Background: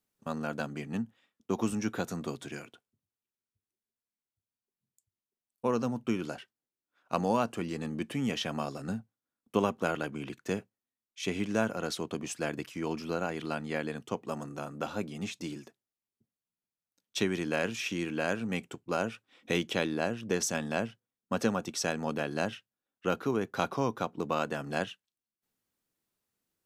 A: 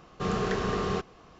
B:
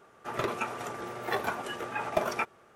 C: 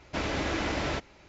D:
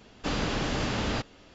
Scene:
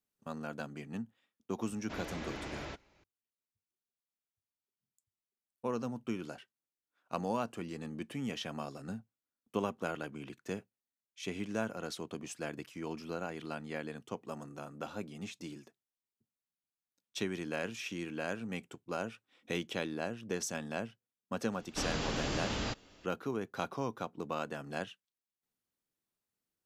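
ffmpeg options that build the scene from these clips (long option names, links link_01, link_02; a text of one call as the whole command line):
ffmpeg -i bed.wav -i cue0.wav -i cue1.wav -i cue2.wav -i cue3.wav -filter_complex "[0:a]volume=-6.5dB[link_01];[4:a]highshelf=frequency=6100:gain=9[link_02];[3:a]atrim=end=1.28,asetpts=PTS-STARTPTS,volume=-12.5dB,afade=type=in:duration=0.004:curve=hsin,afade=type=out:start_time=1.276:duration=0.004:curve=hsin,adelay=1760[link_03];[link_02]atrim=end=1.54,asetpts=PTS-STARTPTS,volume=-7dB,afade=type=in:duration=0.004:curve=hsin,afade=type=out:start_time=1.536:duration=0.004:curve=hsin,adelay=21520[link_04];[link_01][link_03][link_04]amix=inputs=3:normalize=0" out.wav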